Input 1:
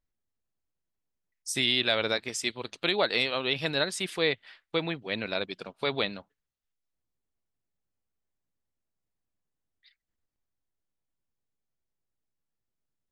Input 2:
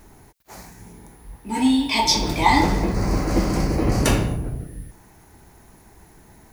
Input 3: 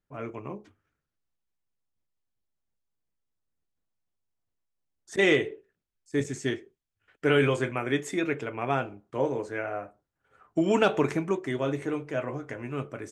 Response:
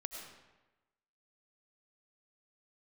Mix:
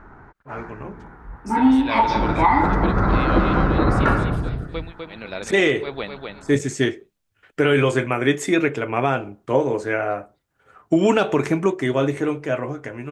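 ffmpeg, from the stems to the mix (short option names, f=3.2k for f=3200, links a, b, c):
-filter_complex "[0:a]tremolo=f=1.5:d=0.97,acrossover=split=2700[a][b];[b]acompressor=threshold=-43dB:ratio=4:attack=1:release=60[c];[a][c]amix=inputs=2:normalize=0,volume=1dB,asplit=2[d][e];[e]volume=-4.5dB[f];[1:a]lowpass=f=1.4k:t=q:w=4.8,volume=2.5dB[g];[2:a]dynaudnorm=f=550:g=5:m=11.5dB,adelay=350,volume=1.5dB[h];[f]aecho=0:1:251|502|753|1004:1|0.23|0.0529|0.0122[i];[d][g][h][i]amix=inputs=4:normalize=0,alimiter=limit=-6.5dB:level=0:latency=1:release=234"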